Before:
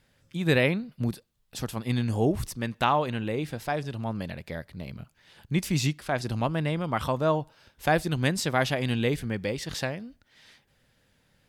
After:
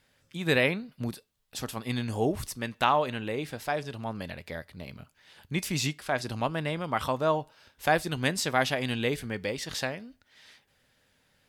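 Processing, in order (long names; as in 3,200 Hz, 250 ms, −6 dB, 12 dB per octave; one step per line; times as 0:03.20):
low-shelf EQ 320 Hz −7.5 dB
tuned comb filter 86 Hz, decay 0.18 s, harmonics odd, mix 40%
level +4 dB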